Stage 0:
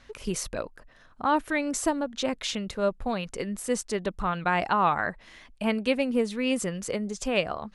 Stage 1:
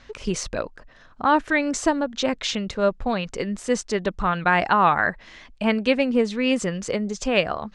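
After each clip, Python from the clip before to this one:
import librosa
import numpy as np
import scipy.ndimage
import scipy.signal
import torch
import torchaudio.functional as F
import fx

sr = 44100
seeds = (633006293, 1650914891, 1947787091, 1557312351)

y = scipy.signal.sosfilt(scipy.signal.butter(4, 7200.0, 'lowpass', fs=sr, output='sos'), x)
y = fx.dynamic_eq(y, sr, hz=1700.0, q=3.1, threshold_db=-42.0, ratio=4.0, max_db=4)
y = y * 10.0 ** (5.0 / 20.0)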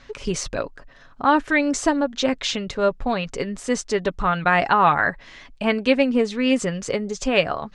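y = x + 0.33 * np.pad(x, (int(7.2 * sr / 1000.0), 0))[:len(x)]
y = y * 10.0 ** (1.0 / 20.0)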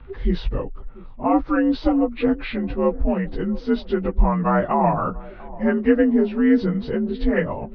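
y = fx.partial_stretch(x, sr, pct=85)
y = fx.riaa(y, sr, side='playback')
y = fx.echo_banded(y, sr, ms=689, feedback_pct=56, hz=420.0, wet_db=-18.5)
y = y * 10.0 ** (-2.0 / 20.0)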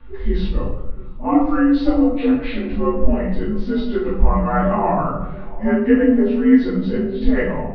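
y = fx.room_shoebox(x, sr, seeds[0], volume_m3=180.0, walls='mixed', distance_m=2.4)
y = y * 10.0 ** (-7.5 / 20.0)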